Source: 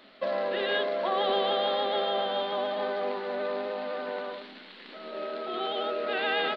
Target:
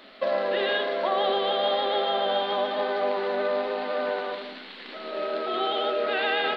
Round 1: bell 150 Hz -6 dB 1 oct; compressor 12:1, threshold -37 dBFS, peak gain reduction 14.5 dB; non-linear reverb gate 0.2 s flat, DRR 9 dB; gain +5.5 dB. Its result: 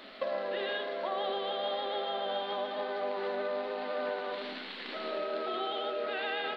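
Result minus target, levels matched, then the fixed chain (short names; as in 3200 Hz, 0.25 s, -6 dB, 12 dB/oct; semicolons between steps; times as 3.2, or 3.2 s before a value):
compressor: peak gain reduction +9 dB
bell 150 Hz -6 dB 1 oct; compressor 12:1, threshold -27 dBFS, peak gain reduction 5.5 dB; non-linear reverb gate 0.2 s flat, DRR 9 dB; gain +5.5 dB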